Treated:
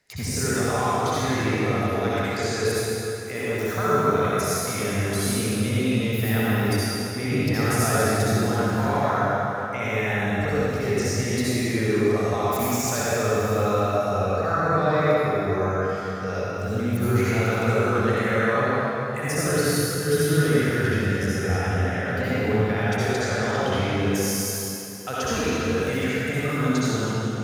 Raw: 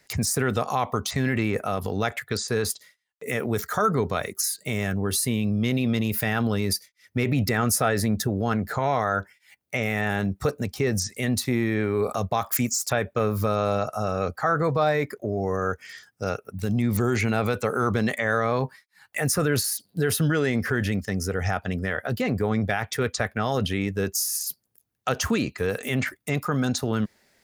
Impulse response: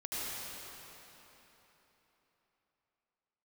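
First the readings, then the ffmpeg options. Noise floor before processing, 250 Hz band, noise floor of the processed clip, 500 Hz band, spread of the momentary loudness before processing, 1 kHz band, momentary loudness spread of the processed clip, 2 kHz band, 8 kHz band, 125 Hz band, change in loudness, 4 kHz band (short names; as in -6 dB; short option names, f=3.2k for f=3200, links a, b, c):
-70 dBFS, +1.5 dB, -29 dBFS, +3.5 dB, 6 LU, +2.5 dB, 5 LU, +2.5 dB, -0.5 dB, +2.5 dB, +2.0 dB, +1.5 dB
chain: -filter_complex "[0:a]highshelf=f=10k:g=-5.5[a];[1:a]atrim=start_sample=2205,asetrate=52920,aresample=44100[b];[a][b]afir=irnorm=-1:irlink=0"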